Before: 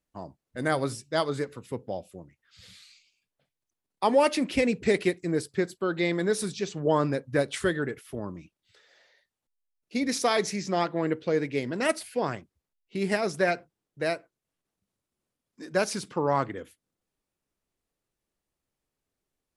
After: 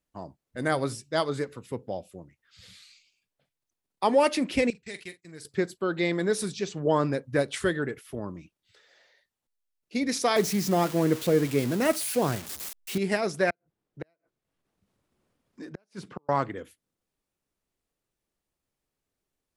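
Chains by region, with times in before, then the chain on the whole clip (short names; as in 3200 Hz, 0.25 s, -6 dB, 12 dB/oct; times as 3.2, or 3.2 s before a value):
4.7–5.45 gate -38 dBFS, range -17 dB + passive tone stack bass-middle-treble 5-5-5 + doubler 44 ms -13.5 dB
10.36–12.98 switching spikes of -19 dBFS + tilt -2.5 dB/oct
13.5–16.29 high shelf 3700 Hz -11 dB + flipped gate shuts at -22 dBFS, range -42 dB + three-band squash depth 40%
whole clip: dry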